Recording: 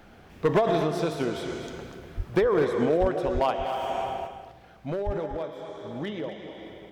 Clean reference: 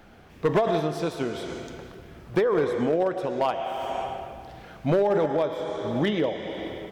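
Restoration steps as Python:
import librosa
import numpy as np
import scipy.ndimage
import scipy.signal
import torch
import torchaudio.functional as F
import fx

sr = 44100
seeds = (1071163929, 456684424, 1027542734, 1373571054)

y = fx.fix_deplosive(x, sr, at_s=(2.16, 3.0, 3.33, 5.05))
y = fx.fix_echo_inverse(y, sr, delay_ms=244, level_db=-9.5)
y = fx.gain(y, sr, db=fx.steps((0.0, 0.0), (4.27, 9.0)))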